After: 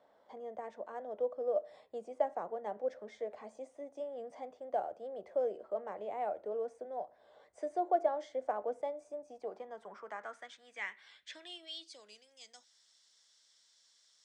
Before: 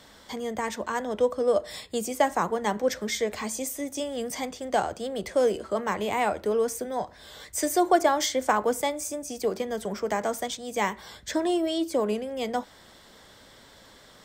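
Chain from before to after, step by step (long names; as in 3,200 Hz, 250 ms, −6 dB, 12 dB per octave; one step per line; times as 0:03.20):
dynamic equaliser 1,000 Hz, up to −6 dB, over −43 dBFS, Q 3.6
downsampling to 22,050 Hz
band-pass filter sweep 640 Hz → 5,900 Hz, 0:09.23–0:12.38
level −6.5 dB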